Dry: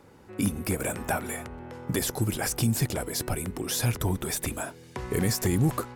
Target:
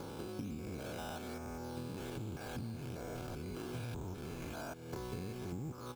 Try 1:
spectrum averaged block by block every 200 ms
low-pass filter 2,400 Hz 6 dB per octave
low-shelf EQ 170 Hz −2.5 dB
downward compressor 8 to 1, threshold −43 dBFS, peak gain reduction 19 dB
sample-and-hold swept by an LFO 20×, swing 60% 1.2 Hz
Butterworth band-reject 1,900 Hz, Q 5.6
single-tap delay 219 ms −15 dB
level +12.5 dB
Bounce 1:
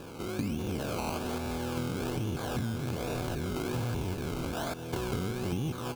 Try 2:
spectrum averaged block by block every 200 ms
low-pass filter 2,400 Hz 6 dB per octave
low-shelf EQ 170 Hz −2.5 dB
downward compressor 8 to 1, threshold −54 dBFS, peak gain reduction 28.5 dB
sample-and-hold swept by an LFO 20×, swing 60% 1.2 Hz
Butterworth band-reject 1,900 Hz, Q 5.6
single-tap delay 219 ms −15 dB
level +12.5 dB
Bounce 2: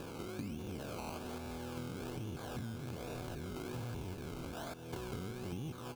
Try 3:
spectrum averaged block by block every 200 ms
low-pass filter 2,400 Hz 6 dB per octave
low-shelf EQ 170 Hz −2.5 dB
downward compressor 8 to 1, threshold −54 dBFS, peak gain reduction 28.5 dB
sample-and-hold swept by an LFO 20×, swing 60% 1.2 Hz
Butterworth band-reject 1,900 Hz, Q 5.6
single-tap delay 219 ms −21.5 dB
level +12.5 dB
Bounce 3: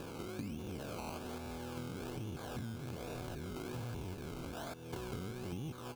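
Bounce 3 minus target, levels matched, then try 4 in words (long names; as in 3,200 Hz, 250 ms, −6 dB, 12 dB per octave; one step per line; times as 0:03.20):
sample-and-hold swept by an LFO: distortion +6 dB
spectrum averaged block by block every 200 ms
low-pass filter 2,400 Hz 6 dB per octave
low-shelf EQ 170 Hz −2.5 dB
downward compressor 8 to 1, threshold −54 dBFS, peak gain reduction 28.5 dB
sample-and-hold swept by an LFO 8×, swing 60% 1.2 Hz
Butterworth band-reject 1,900 Hz, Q 5.6
single-tap delay 219 ms −21.5 dB
level +12.5 dB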